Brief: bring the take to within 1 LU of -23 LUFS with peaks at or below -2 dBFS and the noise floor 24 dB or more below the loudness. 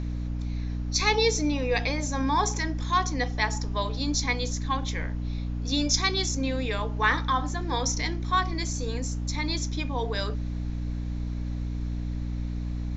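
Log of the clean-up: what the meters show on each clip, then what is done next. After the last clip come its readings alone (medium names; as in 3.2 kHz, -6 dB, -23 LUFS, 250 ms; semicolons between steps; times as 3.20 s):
hum 60 Hz; highest harmonic 300 Hz; hum level -28 dBFS; noise floor -31 dBFS; noise floor target -52 dBFS; loudness -28.0 LUFS; peak level -9.0 dBFS; loudness target -23.0 LUFS
-> hum notches 60/120/180/240/300 Hz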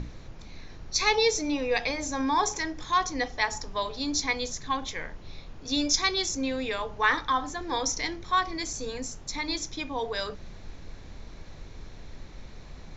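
hum not found; noise floor -45 dBFS; noise floor target -52 dBFS
-> noise print and reduce 7 dB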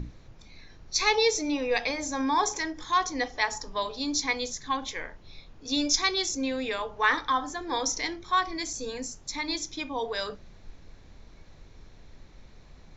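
noise floor -52 dBFS; noise floor target -53 dBFS
-> noise print and reduce 6 dB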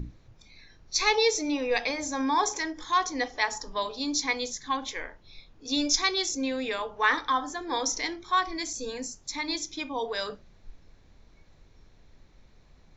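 noise floor -57 dBFS; loudness -28.5 LUFS; peak level -10.0 dBFS; loudness target -23.0 LUFS
-> trim +5.5 dB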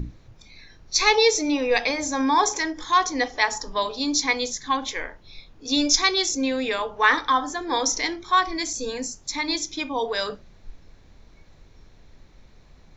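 loudness -23.0 LUFS; peak level -4.5 dBFS; noise floor -52 dBFS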